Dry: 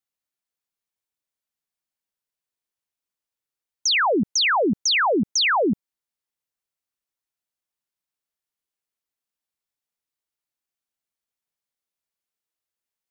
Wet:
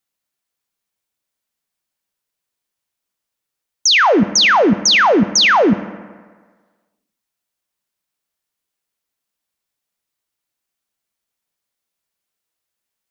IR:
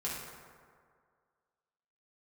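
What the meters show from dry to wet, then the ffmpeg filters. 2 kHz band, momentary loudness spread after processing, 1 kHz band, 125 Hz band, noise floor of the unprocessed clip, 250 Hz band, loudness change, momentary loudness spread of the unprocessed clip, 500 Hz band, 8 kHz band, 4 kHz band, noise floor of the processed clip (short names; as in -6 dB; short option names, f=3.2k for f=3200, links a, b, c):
+8.0 dB, 5 LU, +8.0 dB, +9.5 dB, under -85 dBFS, +8.5 dB, +8.0 dB, 6 LU, +8.0 dB, n/a, +8.0 dB, -81 dBFS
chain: -filter_complex "[0:a]asplit=2[a][b];[1:a]atrim=start_sample=2205,asetrate=57330,aresample=44100[c];[b][c]afir=irnorm=-1:irlink=0,volume=-12.5dB[d];[a][d]amix=inputs=2:normalize=0,volume=7dB"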